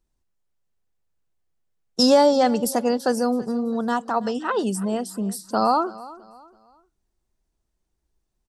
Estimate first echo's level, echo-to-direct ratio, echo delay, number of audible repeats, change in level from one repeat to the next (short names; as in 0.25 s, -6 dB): -19.0 dB, -18.5 dB, 0.33 s, 2, -9.0 dB